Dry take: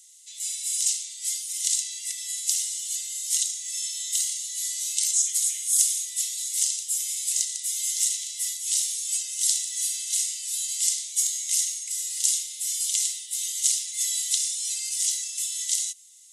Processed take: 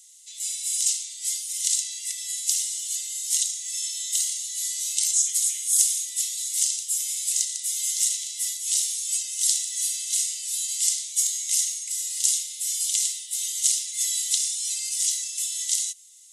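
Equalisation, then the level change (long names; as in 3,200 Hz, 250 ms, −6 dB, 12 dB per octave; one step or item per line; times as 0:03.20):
high-pass filter 1,500 Hz 12 dB per octave
+1.0 dB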